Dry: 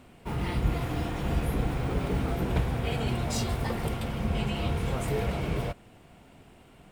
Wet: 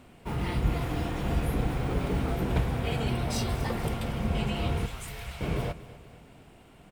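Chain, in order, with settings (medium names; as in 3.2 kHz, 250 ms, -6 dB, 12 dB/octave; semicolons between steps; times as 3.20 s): 3.08–3.54 s: band-stop 7 kHz, Q 6.4; 4.86–5.41 s: amplifier tone stack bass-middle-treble 10-0-10; feedback delay 240 ms, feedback 50%, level -17 dB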